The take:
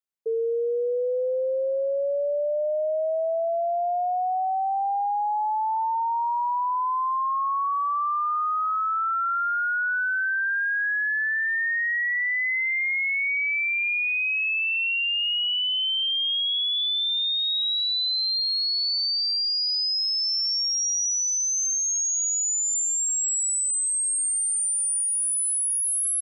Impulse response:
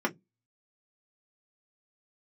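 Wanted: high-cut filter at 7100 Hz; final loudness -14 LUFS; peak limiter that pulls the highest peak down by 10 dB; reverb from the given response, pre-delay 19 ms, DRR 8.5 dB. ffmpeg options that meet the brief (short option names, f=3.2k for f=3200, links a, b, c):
-filter_complex "[0:a]lowpass=7.1k,alimiter=level_in=8dB:limit=-24dB:level=0:latency=1,volume=-8dB,asplit=2[a][b];[1:a]atrim=start_sample=2205,adelay=19[c];[b][c]afir=irnorm=-1:irlink=0,volume=-18dB[d];[a][d]amix=inputs=2:normalize=0,volume=18.5dB"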